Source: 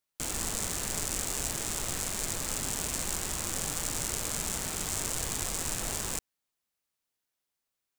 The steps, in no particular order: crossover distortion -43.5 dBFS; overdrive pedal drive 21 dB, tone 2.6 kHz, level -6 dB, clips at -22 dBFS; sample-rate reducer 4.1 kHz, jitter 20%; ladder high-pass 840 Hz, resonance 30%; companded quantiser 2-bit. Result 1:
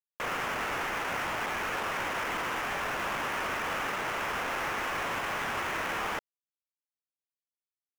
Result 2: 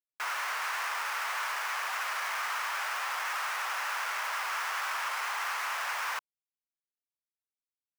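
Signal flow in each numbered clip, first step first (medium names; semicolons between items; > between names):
companded quantiser > ladder high-pass > sample-rate reducer > overdrive pedal > crossover distortion; sample-rate reducer > overdrive pedal > companded quantiser > crossover distortion > ladder high-pass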